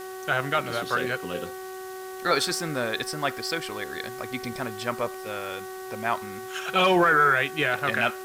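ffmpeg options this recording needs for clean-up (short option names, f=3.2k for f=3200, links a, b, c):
-af "bandreject=f=376.1:t=h:w=4,bandreject=f=752.2:t=h:w=4,bandreject=f=1.1283k:t=h:w=4,bandreject=f=1.5044k:t=h:w=4,bandreject=f=1.8805k:t=h:w=4,afwtdn=0.0045"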